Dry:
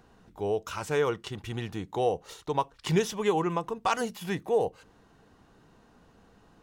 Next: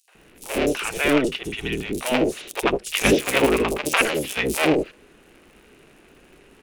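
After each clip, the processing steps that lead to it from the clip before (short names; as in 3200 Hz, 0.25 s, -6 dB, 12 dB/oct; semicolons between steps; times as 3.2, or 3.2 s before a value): cycle switcher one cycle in 3, inverted; fifteen-band EQ 100 Hz -12 dB, 400 Hz +7 dB, 1000 Hz -5 dB, 2500 Hz +11 dB, 10000 Hz +9 dB; three bands offset in time highs, mids, lows 80/150 ms, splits 610/4900 Hz; gain +6.5 dB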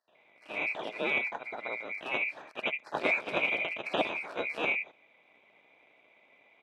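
band-swap scrambler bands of 2000 Hz; BPF 220–2100 Hz; bell 630 Hz +5 dB 0.26 oct; gain -8 dB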